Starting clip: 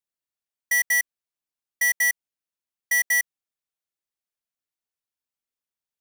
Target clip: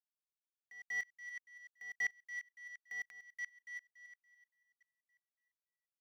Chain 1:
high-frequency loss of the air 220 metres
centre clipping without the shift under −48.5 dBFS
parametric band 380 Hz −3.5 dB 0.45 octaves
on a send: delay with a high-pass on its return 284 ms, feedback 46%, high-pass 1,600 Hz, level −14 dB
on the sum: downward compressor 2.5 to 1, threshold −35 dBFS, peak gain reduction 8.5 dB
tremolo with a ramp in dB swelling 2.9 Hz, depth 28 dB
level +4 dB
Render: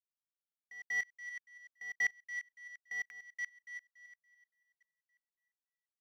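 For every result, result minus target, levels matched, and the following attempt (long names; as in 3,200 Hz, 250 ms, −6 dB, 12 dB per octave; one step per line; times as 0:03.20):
centre clipping without the shift: distortion −11 dB; downward compressor: peak gain reduction −4 dB
high-frequency loss of the air 220 metres
centre clipping without the shift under −40.5 dBFS
parametric band 380 Hz −3.5 dB 0.45 octaves
on a send: delay with a high-pass on its return 284 ms, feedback 46%, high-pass 1,600 Hz, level −14 dB
on the sum: downward compressor 2.5 to 1, threshold −35 dBFS, peak gain reduction 8.5 dB
tremolo with a ramp in dB swelling 2.9 Hz, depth 28 dB
level +4 dB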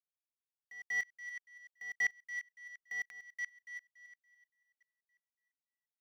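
downward compressor: peak gain reduction −4 dB
high-frequency loss of the air 220 metres
centre clipping without the shift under −40.5 dBFS
parametric band 380 Hz −3.5 dB 0.45 octaves
on a send: delay with a high-pass on its return 284 ms, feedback 46%, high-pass 1,600 Hz, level −14 dB
on the sum: downward compressor 2.5 to 1, threshold −41.5 dBFS, peak gain reduction 12.5 dB
tremolo with a ramp in dB swelling 2.9 Hz, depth 28 dB
level +4 dB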